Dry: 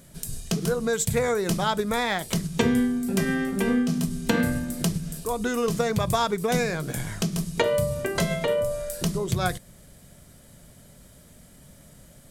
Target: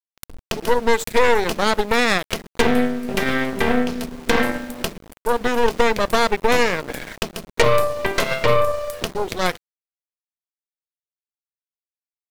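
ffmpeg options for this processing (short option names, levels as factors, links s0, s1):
-af "equalizer=f=125:t=o:w=1:g=-9,equalizer=f=250:t=o:w=1:g=10,equalizer=f=500:t=o:w=1:g=11,equalizer=f=2000:t=o:w=1:g=7,equalizer=f=4000:t=o:w=1:g=3,equalizer=f=8000:t=o:w=1:g=-7,anlmdn=10,equalizer=f=140:w=0.33:g=-12.5,aeval=exprs='val(0)*gte(abs(val(0)),0.0168)':c=same,aeval=exprs='0.631*(cos(1*acos(clip(val(0)/0.631,-1,1)))-cos(1*PI/2))+0.141*(cos(8*acos(clip(val(0)/0.631,-1,1)))-cos(8*PI/2))':c=same"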